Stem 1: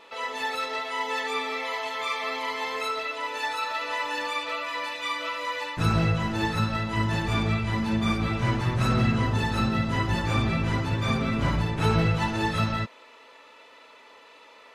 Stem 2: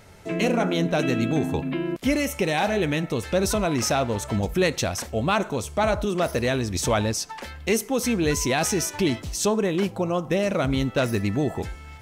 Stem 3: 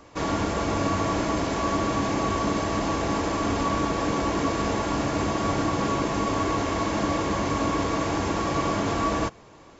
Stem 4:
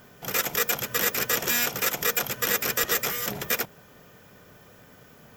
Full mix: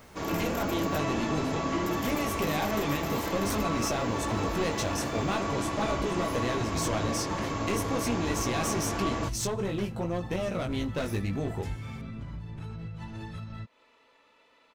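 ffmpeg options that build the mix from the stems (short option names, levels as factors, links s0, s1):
-filter_complex "[0:a]bass=f=250:g=11,treble=f=4000:g=0,alimiter=limit=0.251:level=0:latency=1:release=175,acompressor=threshold=0.0562:ratio=4,adelay=800,volume=0.251[s0];[1:a]flanger=delay=16.5:depth=4.7:speed=0.48,aeval=exprs='clip(val(0),-1,0.0473)':c=same,acompressor=threshold=0.0282:ratio=2,volume=1[s1];[2:a]volume=0.447[s2];[3:a]acompressor=threshold=0.0282:ratio=6,volume=0.335,asplit=3[s3][s4][s5];[s3]atrim=end=0.99,asetpts=PTS-STARTPTS,afade=t=out:st=0.986:d=0.004:c=hsin[s6];[s4]atrim=start=0.99:end=1.86,asetpts=PTS-STARTPTS,volume=0[s7];[s5]atrim=start=1.86,asetpts=PTS-STARTPTS,afade=t=in:d=0.004:c=hsin[s8];[s6][s7][s8]concat=n=3:v=0:a=1[s9];[s0][s1][s2][s9]amix=inputs=4:normalize=0"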